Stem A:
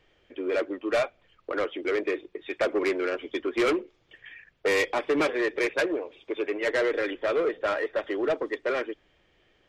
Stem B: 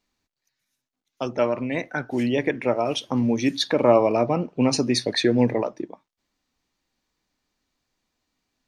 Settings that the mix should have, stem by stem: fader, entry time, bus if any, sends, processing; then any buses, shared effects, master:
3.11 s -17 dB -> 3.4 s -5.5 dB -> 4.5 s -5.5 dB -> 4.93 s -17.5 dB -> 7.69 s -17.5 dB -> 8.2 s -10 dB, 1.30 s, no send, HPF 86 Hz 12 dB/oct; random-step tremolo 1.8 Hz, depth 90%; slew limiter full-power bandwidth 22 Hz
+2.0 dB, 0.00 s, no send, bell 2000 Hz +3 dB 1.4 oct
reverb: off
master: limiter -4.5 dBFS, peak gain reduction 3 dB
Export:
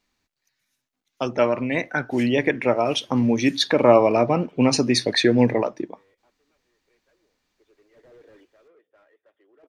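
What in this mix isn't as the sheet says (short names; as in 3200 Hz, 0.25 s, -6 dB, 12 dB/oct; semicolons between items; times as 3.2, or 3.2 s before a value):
stem A -17.0 dB -> -27.0 dB; master: missing limiter -4.5 dBFS, peak gain reduction 3 dB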